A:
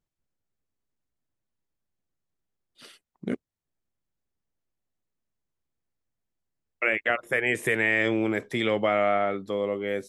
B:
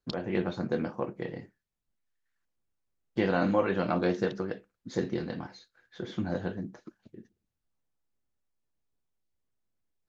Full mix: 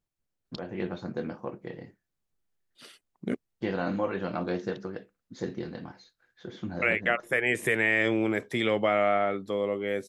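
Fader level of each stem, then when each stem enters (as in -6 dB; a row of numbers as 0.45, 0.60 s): -1.0, -3.5 dB; 0.00, 0.45 s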